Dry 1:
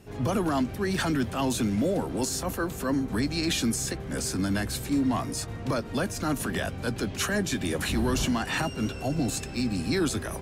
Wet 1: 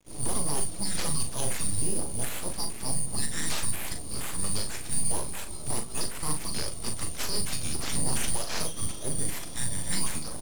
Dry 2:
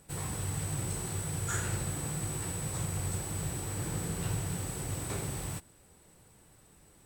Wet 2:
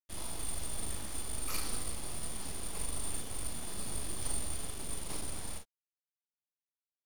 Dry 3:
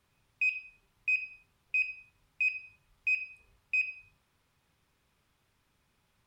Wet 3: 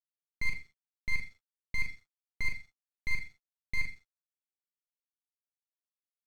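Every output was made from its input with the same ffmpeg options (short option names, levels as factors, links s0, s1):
-filter_complex "[0:a]afftfilt=real='real(if(lt(b,272),68*(eq(floor(b/68),0)*1+eq(floor(b/68),1)*2+eq(floor(b/68),2)*3+eq(floor(b/68),3)*0)+mod(b,68),b),0)':imag='imag(if(lt(b,272),68*(eq(floor(b/68),0)*1+eq(floor(b/68),1)*2+eq(floor(b/68),2)*3+eq(floor(b/68),3)*0)+mod(b,68),b),0)':win_size=2048:overlap=0.75,bandreject=f=800:w=25,agate=range=0.00398:threshold=0.00112:ratio=16:detection=peak,aresample=16000,aeval=exprs='sgn(val(0))*max(abs(val(0))-0.00316,0)':c=same,aresample=44100,aeval=exprs='0.178*(cos(1*acos(clip(val(0)/0.178,-1,1)))-cos(1*PI/2))+0.00891*(cos(2*acos(clip(val(0)/0.178,-1,1)))-cos(2*PI/2))':c=same,aeval=exprs='abs(val(0))':c=same,asplit=2[s0][s1];[s1]aecho=0:1:40|53:0.447|0.15[s2];[s0][s2]amix=inputs=2:normalize=0"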